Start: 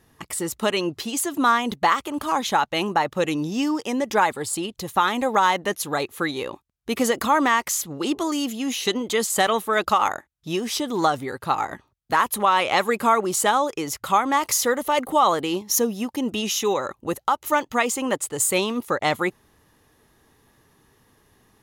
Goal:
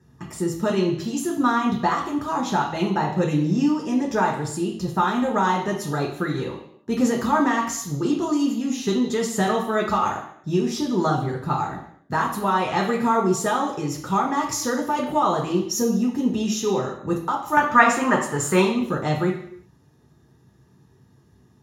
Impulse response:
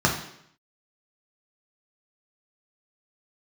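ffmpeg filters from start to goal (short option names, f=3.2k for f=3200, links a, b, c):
-filter_complex "[0:a]asetnsamples=n=441:p=0,asendcmd='17.57 equalizer g 9;18.64 equalizer g -8.5',equalizer=f=1.4k:w=0.75:g=-6[a];[1:a]atrim=start_sample=2205,afade=t=out:st=0.44:d=0.01,atrim=end_sample=19845[b];[a][b]afir=irnorm=-1:irlink=0,volume=-15.5dB"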